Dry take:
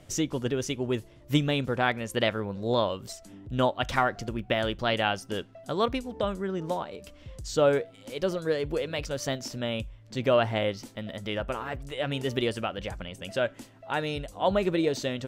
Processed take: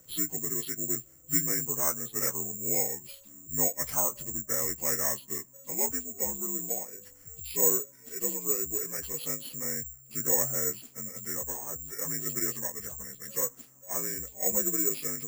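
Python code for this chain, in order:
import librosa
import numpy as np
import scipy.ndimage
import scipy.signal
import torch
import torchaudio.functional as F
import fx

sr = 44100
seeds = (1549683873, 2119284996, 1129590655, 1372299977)

y = fx.partial_stretch(x, sr, pct=81)
y = (np.kron(scipy.signal.resample_poly(y, 1, 6), np.eye(6)[0]) * 6)[:len(y)]
y = y * librosa.db_to_amplitude(-9.0)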